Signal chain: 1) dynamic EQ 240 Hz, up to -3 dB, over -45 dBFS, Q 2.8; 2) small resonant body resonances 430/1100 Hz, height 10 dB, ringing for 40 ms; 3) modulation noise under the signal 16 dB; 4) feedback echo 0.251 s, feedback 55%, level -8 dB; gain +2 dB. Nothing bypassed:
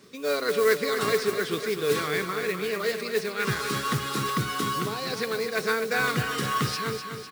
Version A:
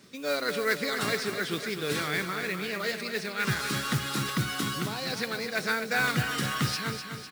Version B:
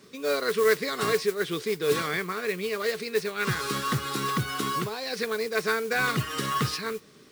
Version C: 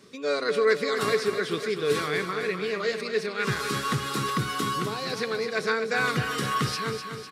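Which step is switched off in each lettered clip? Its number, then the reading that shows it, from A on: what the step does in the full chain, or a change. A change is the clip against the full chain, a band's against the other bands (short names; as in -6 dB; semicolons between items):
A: 2, 500 Hz band -6.5 dB; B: 4, echo-to-direct -6.5 dB to none; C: 3, 8 kHz band -2.5 dB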